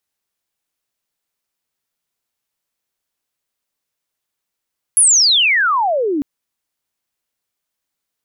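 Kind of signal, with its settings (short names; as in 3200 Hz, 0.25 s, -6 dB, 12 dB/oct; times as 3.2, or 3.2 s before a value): chirp logarithmic 11000 Hz -> 270 Hz -7 dBFS -> -15.5 dBFS 1.25 s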